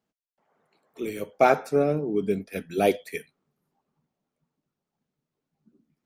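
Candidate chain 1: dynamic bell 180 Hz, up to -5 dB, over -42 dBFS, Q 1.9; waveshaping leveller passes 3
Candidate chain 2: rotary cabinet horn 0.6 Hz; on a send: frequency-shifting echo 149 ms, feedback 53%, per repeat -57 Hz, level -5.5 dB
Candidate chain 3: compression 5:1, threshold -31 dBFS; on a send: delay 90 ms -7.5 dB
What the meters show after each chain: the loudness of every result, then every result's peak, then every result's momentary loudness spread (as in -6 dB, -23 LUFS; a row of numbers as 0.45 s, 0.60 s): -18.5 LUFS, -26.0 LUFS, -35.5 LUFS; -7.0 dBFS, -7.5 dBFS, -17.5 dBFS; 9 LU, 15 LU, 7 LU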